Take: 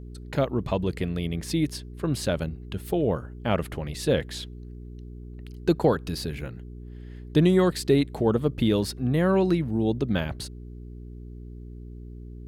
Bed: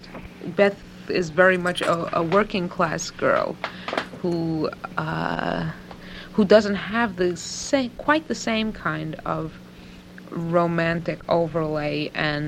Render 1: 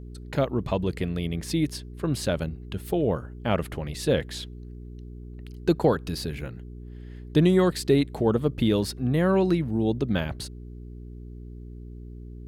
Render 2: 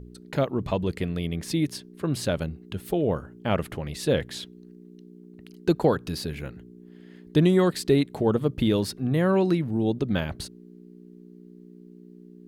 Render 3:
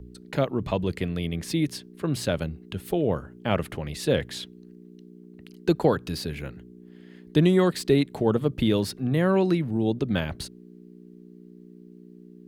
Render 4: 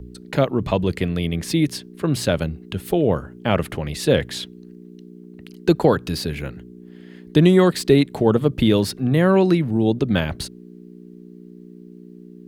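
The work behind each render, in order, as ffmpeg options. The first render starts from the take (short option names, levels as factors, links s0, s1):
-af anull
-af "bandreject=f=60:t=h:w=4,bandreject=f=120:t=h:w=4"
-filter_complex "[0:a]acrossover=split=110|1500|2700[s0][s1][s2][s3];[s2]crystalizer=i=3:c=0[s4];[s3]asoftclip=type=hard:threshold=0.0335[s5];[s0][s1][s4][s5]amix=inputs=4:normalize=0"
-af "volume=2,alimiter=limit=0.708:level=0:latency=1"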